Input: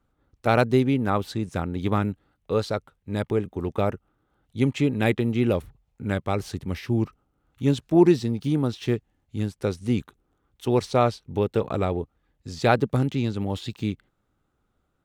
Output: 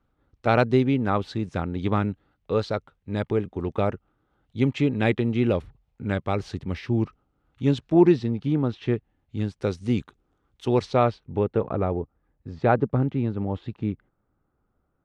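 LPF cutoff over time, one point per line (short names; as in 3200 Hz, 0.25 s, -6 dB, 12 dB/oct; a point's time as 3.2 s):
7.8 s 4700 Hz
8.41 s 2700 Hz
8.96 s 2700 Hz
9.73 s 6300 Hz
10.71 s 6300 Hz
11.07 s 3000 Hz
11.74 s 1500 Hz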